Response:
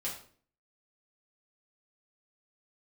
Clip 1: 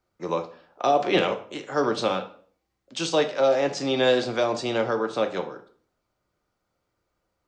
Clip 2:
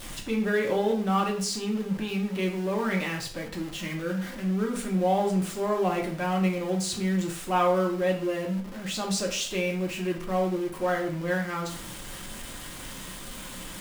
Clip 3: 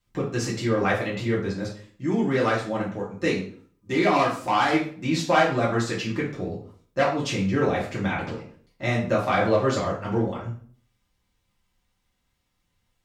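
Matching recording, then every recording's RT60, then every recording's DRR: 3; 0.50, 0.50, 0.50 s; 5.5, 0.0, -6.0 dB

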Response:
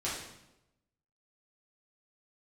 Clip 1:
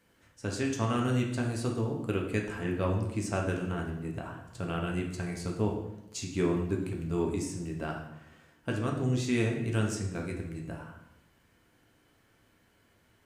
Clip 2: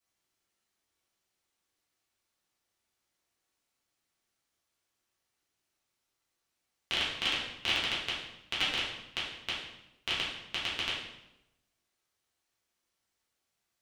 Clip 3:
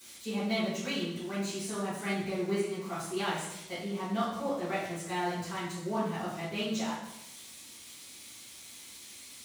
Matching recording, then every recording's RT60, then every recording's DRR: 2; 0.90, 0.90, 0.90 s; -0.5, -8.5, -15.5 dB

